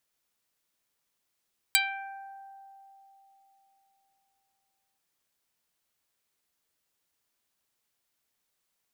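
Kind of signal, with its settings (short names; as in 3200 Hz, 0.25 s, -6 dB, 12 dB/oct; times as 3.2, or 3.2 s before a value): plucked string G5, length 3.23 s, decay 3.78 s, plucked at 0.14, dark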